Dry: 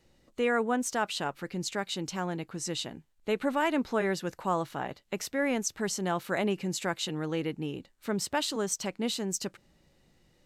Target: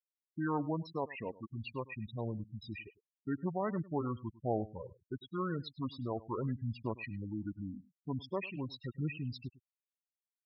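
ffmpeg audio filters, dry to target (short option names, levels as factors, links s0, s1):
-filter_complex "[0:a]aphaser=in_gain=1:out_gain=1:delay=3.1:decay=0.25:speed=0.44:type=triangular,afftfilt=real='re*gte(hypot(re,im),0.0631)':imag='im*gte(hypot(re,im),0.0631)':win_size=1024:overlap=0.75,acrossover=split=5400[s0][s1];[s1]acompressor=threshold=0.00398:ratio=4:attack=1:release=60[s2];[s0][s2]amix=inputs=2:normalize=0,asetrate=28595,aresample=44100,atempo=1.54221,aecho=1:1:102:0.106,volume=0.473"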